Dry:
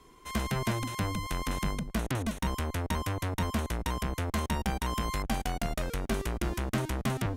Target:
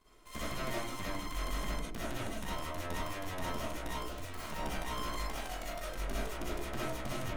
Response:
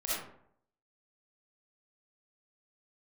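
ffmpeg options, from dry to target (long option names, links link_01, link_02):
-filter_complex "[0:a]bandreject=frequency=70.69:width_type=h:width=4,bandreject=frequency=141.38:width_type=h:width=4,bandreject=frequency=212.07:width_type=h:width=4,bandreject=frequency=282.76:width_type=h:width=4,bandreject=frequency=353.45:width_type=h:width=4,bandreject=frequency=424.14:width_type=h:width=4,bandreject=frequency=494.83:width_type=h:width=4,bandreject=frequency=565.52:width_type=h:width=4,bandreject=frequency=636.21:width_type=h:width=4,bandreject=frequency=706.9:width_type=h:width=4,bandreject=frequency=777.59:width_type=h:width=4,bandreject=frequency=848.28:width_type=h:width=4,bandreject=frequency=918.97:width_type=h:width=4,bandreject=frequency=989.66:width_type=h:width=4,bandreject=frequency=1060.35:width_type=h:width=4,bandreject=frequency=1131.04:width_type=h:width=4,bandreject=frequency=1201.73:width_type=h:width=4,bandreject=frequency=1272.42:width_type=h:width=4,bandreject=frequency=1343.11:width_type=h:width=4,bandreject=frequency=1413.8:width_type=h:width=4,bandreject=frequency=1484.49:width_type=h:width=4,bandreject=frequency=1555.18:width_type=h:width=4,bandreject=frequency=1625.87:width_type=h:width=4,bandreject=frequency=1696.56:width_type=h:width=4,bandreject=frequency=1767.25:width_type=h:width=4,bandreject=frequency=1837.94:width_type=h:width=4,bandreject=frequency=1908.63:width_type=h:width=4,bandreject=frequency=1979.32:width_type=h:width=4,bandreject=frequency=2050.01:width_type=h:width=4,bandreject=frequency=2120.7:width_type=h:width=4,bandreject=frequency=2191.39:width_type=h:width=4,bandreject=frequency=2262.08:width_type=h:width=4,bandreject=frequency=2332.77:width_type=h:width=4,bandreject=frequency=2403.46:width_type=h:width=4,bandreject=frequency=2474.15:width_type=h:width=4,bandreject=frequency=2544.84:width_type=h:width=4,bandreject=frequency=2615.53:width_type=h:width=4,bandreject=frequency=2686.22:width_type=h:width=4,asplit=3[link_01][link_02][link_03];[link_01]afade=type=out:start_time=3.97:duration=0.02[link_04];[link_02]aeval=exprs='0.0316*(abs(mod(val(0)/0.0316+3,4)-2)-1)':channel_layout=same,afade=type=in:start_time=3.97:duration=0.02,afade=type=out:start_time=4.5:duration=0.02[link_05];[link_03]afade=type=in:start_time=4.5:duration=0.02[link_06];[link_04][link_05][link_06]amix=inputs=3:normalize=0,asettb=1/sr,asplit=3[link_07][link_08][link_09];[link_07]atrim=end=5.304[link_10];[link_08]atrim=start=5.3:end=5.93,asetpts=PTS-STARTPTS,afade=type=in:duration=0.004:curve=qsin,afade=type=out:start_time=0.626:duration=0.004:curve=qsin,lowshelf=frequency=390:gain=-8.5[link_11];[link_09]atrim=start=5.926[link_12];[link_10][link_11]acrossfade=duration=0.004:curve1=hsin:curve2=qsin[link_13];[link_13][link_12]acrossfade=duration=0.004:curve1=qsin:curve2=hsin,aeval=exprs='max(val(0),0)':channel_layout=same[link_14];[1:a]atrim=start_sample=2205,afade=type=out:start_time=0.16:duration=0.01,atrim=end_sample=7497[link_15];[link_14][link_15]afir=irnorm=-1:irlink=0,volume=-5dB"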